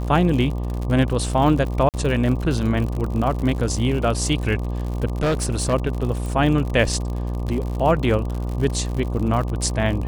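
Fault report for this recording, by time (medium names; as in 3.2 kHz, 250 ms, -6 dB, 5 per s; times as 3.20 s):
buzz 60 Hz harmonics 20 -25 dBFS
crackle 76 per s -27 dBFS
1.89–1.94 s: dropout 48 ms
5.22–5.74 s: clipped -16.5 dBFS
6.26 s: pop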